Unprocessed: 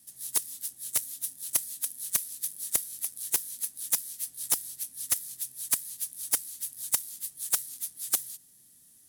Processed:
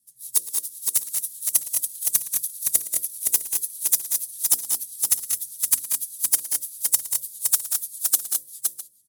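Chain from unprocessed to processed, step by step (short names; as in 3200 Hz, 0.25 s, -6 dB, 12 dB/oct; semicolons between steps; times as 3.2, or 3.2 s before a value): per-bin expansion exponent 1.5; tone controls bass +1 dB, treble +7 dB; notches 60/120/180/240/300/360/420/480/540 Hz; on a send: tapped delay 0.113/0.186/0.21/0.515/0.656 s -17/-8/-6/-4.5/-17 dB; on the sum: gain +2 dB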